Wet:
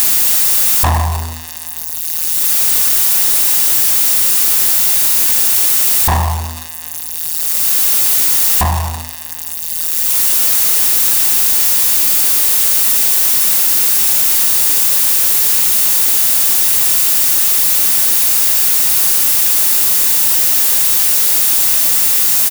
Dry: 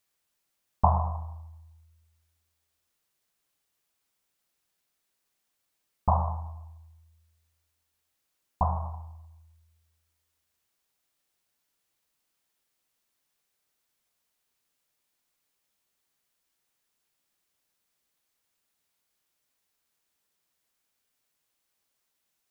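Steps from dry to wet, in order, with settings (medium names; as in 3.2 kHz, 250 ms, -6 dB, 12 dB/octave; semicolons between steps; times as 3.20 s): zero-crossing glitches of -16 dBFS; comb 1.1 ms, depth 31%; waveshaping leveller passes 5; upward compressor, threshold -14 dBFS; trim -4.5 dB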